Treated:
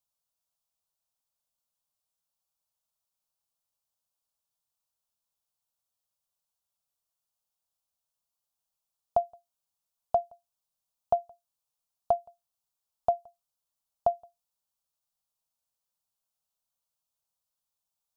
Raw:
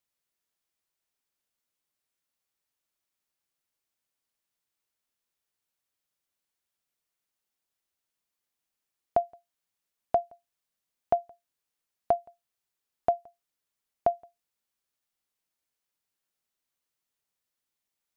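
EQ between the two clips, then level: static phaser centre 810 Hz, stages 4; 0.0 dB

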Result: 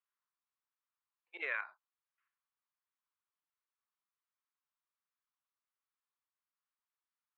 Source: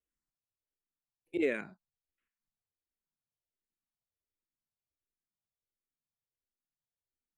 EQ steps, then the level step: ladder high-pass 950 Hz, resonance 55%; distance through air 250 m; +11.5 dB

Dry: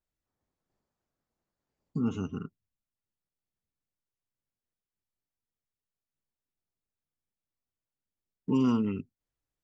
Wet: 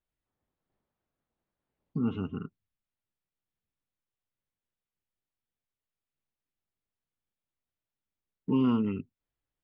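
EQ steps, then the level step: steep low-pass 3.8 kHz 36 dB/octave; 0.0 dB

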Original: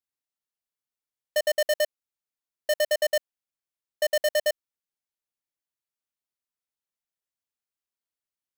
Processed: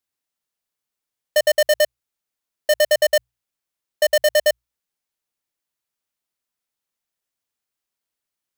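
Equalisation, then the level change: hum notches 60/120 Hz; +7.5 dB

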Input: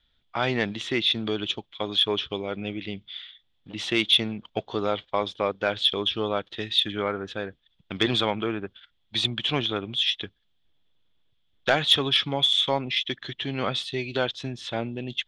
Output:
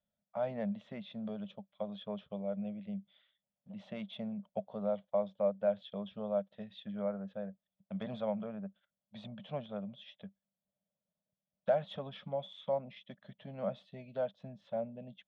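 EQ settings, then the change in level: two resonant band-passes 340 Hz, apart 1.6 oct; 0.0 dB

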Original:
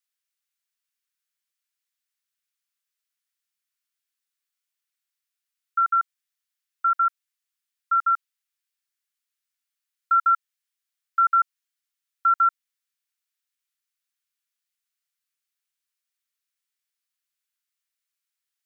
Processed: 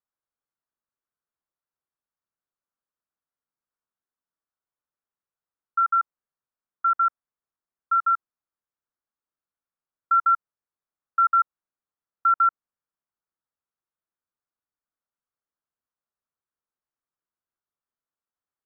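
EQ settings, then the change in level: low-pass 1.2 kHz 24 dB/octave; +5.5 dB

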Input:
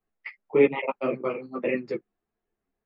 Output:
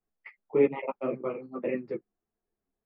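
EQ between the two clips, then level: distance through air 150 m; treble shelf 2.4 kHz -10.5 dB; -3.0 dB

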